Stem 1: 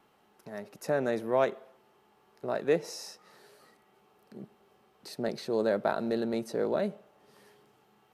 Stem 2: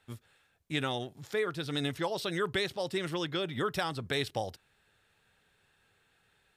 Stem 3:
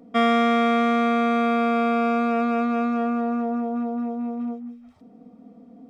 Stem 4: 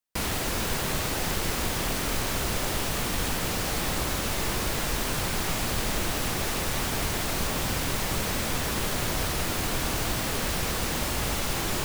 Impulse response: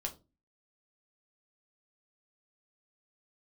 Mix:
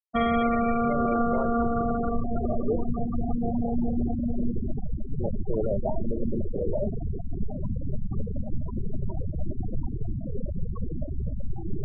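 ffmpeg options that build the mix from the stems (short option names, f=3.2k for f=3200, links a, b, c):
-filter_complex "[0:a]volume=-2dB,asplit=2[a][b];[b]volume=-7.5dB[c];[1:a]tremolo=f=2.9:d=0.45,asplit=2[d][e];[e]afreqshift=1.6[f];[d][f]amix=inputs=2:normalize=1,volume=-9.5dB,asplit=2[g][h];[h]volume=-15.5dB[i];[2:a]volume=6dB,afade=t=out:st=1.44:d=0.78:silence=0.421697,afade=t=in:st=3.09:d=0.59:silence=0.473151[j];[3:a]volume=0.5dB,asplit=2[k][l];[l]volume=-8dB[m];[4:a]atrim=start_sample=2205[n];[c][i][m]amix=inputs=3:normalize=0[o];[o][n]afir=irnorm=-1:irlink=0[p];[a][g][j][k][p]amix=inputs=5:normalize=0,afftfilt=real='re*gte(hypot(re,im),0.178)':imag='im*gte(hypot(re,im),0.178)':win_size=1024:overlap=0.75,alimiter=limit=-16dB:level=0:latency=1:release=150"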